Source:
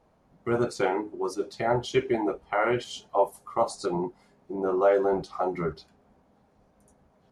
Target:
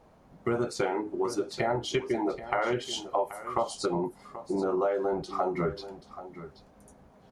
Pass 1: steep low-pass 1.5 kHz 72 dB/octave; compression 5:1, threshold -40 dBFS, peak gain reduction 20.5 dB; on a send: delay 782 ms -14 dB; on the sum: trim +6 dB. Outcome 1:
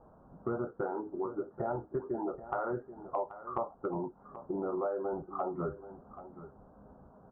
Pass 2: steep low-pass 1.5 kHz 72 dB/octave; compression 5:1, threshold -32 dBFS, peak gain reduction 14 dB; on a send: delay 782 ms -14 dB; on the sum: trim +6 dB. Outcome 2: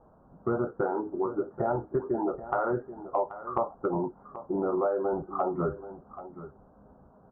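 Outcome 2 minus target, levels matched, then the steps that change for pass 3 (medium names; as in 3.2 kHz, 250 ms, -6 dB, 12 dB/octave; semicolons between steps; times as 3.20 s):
2 kHz band -5.5 dB
remove: steep low-pass 1.5 kHz 72 dB/octave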